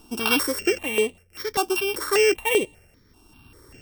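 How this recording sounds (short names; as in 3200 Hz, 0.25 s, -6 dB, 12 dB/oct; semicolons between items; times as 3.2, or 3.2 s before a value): a buzz of ramps at a fixed pitch in blocks of 16 samples; tremolo triangle 0.58 Hz, depth 75%; notches that jump at a steady rate 5.1 Hz 530–5300 Hz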